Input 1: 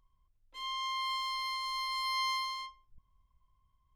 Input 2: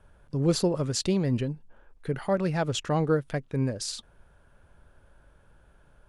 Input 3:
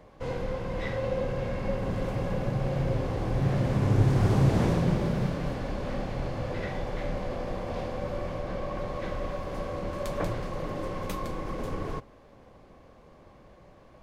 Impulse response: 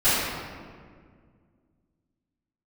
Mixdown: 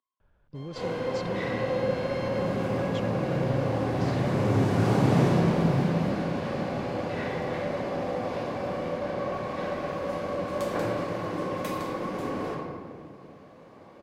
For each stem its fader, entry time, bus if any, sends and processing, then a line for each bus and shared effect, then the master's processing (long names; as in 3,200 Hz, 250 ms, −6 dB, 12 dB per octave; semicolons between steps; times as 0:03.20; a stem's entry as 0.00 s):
−11.5 dB, 0.00 s, bus A, no send, elliptic high-pass filter 230 Hz
−9.0 dB, 0.20 s, bus A, no send, low-pass filter 4,100 Hz 12 dB per octave
−3.0 dB, 0.55 s, no bus, send −13 dB, high-pass filter 170 Hz 12 dB per octave
bus A: 0.0 dB, Bessel low-pass filter 8,500 Hz; brickwall limiter −31 dBFS, peak gain reduction 9 dB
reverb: on, RT60 1.9 s, pre-delay 3 ms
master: no processing